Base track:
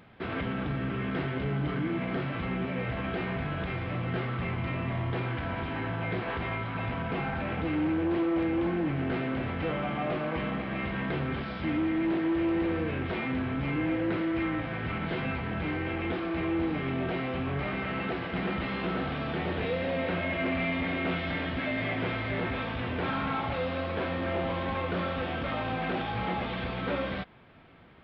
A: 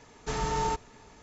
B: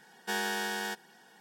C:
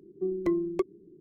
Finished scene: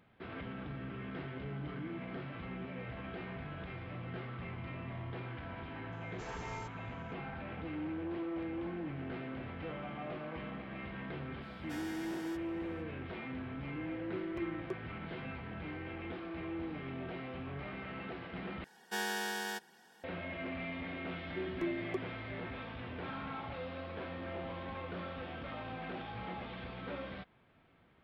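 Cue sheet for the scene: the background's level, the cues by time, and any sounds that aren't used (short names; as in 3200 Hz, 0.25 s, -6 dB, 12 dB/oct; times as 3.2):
base track -11.5 dB
5.92 add A -17.5 dB
11.42 add B -16 dB
13.91 add C -13.5 dB
18.64 replace with B -4 dB
21.15 add C -10 dB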